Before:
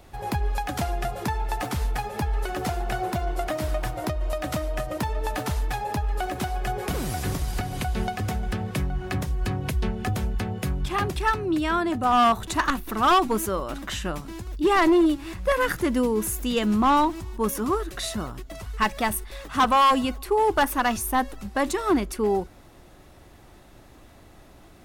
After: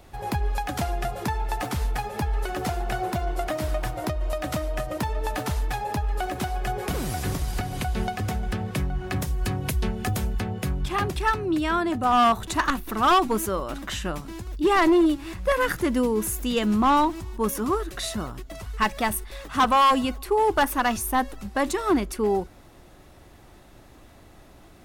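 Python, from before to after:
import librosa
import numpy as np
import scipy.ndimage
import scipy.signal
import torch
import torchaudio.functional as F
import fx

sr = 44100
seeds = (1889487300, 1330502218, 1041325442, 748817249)

y = fx.high_shelf(x, sr, hz=6000.0, db=8.5, at=(9.16, 10.39))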